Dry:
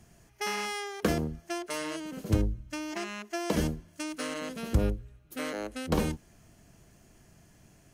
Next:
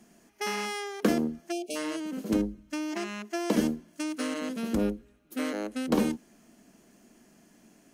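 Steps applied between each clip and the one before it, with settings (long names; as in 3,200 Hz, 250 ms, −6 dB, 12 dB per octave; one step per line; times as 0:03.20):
time-frequency box erased 0:01.51–0:01.76, 820–2,200 Hz
low shelf with overshoot 160 Hz −12.5 dB, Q 3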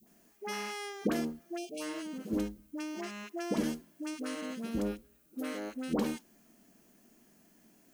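all-pass dispersion highs, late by 73 ms, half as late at 780 Hz
background noise violet −63 dBFS
level −6 dB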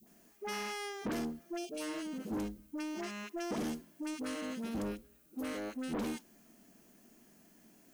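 soft clipping −33.5 dBFS, distortion −9 dB
level +1 dB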